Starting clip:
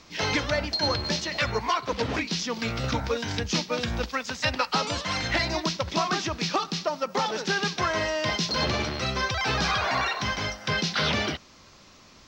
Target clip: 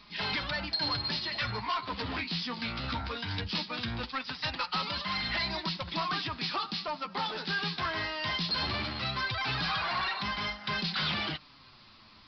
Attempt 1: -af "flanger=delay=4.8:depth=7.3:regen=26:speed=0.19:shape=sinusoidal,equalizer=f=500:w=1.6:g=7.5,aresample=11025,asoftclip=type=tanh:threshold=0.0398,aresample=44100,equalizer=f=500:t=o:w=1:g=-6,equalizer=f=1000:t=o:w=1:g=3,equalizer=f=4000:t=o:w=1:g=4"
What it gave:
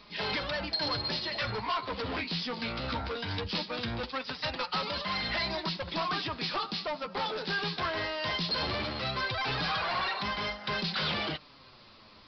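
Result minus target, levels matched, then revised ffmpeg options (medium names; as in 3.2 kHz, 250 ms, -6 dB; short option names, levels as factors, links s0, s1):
500 Hz band +5.5 dB
-af "flanger=delay=4.8:depth=7.3:regen=26:speed=0.19:shape=sinusoidal,equalizer=f=500:w=1.6:g=-2.5,aresample=11025,asoftclip=type=tanh:threshold=0.0398,aresample=44100,equalizer=f=500:t=o:w=1:g=-6,equalizer=f=1000:t=o:w=1:g=3,equalizer=f=4000:t=o:w=1:g=4"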